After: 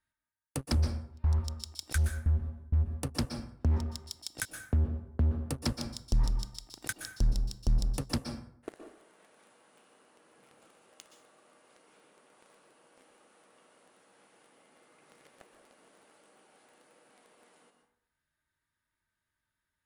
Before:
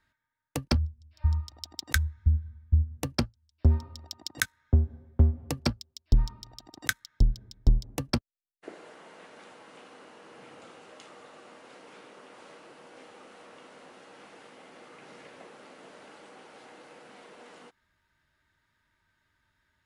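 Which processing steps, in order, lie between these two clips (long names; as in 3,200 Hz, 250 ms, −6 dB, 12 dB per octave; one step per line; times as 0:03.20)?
parametric band 9,800 Hz +14 dB 0.65 octaves
leveller curve on the samples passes 3
brickwall limiter −13 dBFS, peak gain reduction 11.5 dB
dense smooth reverb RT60 0.65 s, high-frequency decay 0.6×, pre-delay 110 ms, DRR 6 dB
highs frequency-modulated by the lows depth 0.3 ms
level −8 dB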